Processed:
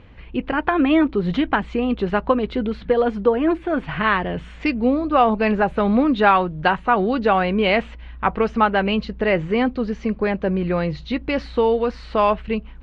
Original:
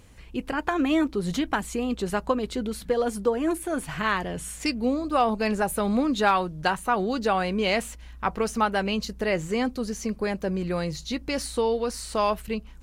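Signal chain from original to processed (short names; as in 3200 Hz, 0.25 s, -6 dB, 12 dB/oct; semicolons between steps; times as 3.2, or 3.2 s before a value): LPF 3200 Hz 24 dB/oct; gain +6.5 dB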